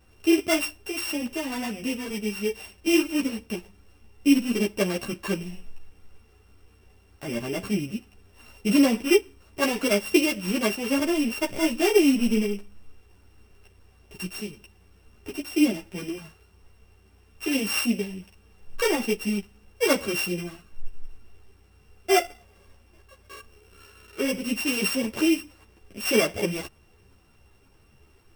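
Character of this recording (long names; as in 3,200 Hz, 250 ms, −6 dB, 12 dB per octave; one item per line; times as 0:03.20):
a buzz of ramps at a fixed pitch in blocks of 16 samples
a shimmering, thickened sound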